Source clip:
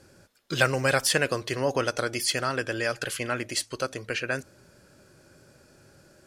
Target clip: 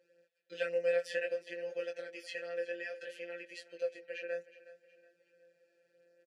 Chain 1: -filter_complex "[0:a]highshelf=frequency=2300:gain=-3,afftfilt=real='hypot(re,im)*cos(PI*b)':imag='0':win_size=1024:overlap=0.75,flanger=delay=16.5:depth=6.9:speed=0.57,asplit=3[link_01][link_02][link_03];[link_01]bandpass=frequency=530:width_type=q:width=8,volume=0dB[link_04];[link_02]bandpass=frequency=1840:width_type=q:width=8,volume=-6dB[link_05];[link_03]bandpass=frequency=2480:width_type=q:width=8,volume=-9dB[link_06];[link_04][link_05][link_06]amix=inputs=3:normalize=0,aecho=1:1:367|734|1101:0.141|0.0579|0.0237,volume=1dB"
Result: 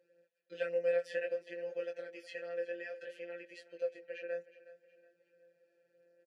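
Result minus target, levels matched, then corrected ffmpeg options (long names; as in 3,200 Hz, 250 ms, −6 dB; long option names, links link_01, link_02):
4,000 Hz band −5.5 dB
-filter_complex "[0:a]highshelf=frequency=2300:gain=6,afftfilt=real='hypot(re,im)*cos(PI*b)':imag='0':win_size=1024:overlap=0.75,flanger=delay=16.5:depth=6.9:speed=0.57,asplit=3[link_01][link_02][link_03];[link_01]bandpass=frequency=530:width_type=q:width=8,volume=0dB[link_04];[link_02]bandpass=frequency=1840:width_type=q:width=8,volume=-6dB[link_05];[link_03]bandpass=frequency=2480:width_type=q:width=8,volume=-9dB[link_06];[link_04][link_05][link_06]amix=inputs=3:normalize=0,aecho=1:1:367|734|1101:0.141|0.0579|0.0237,volume=1dB"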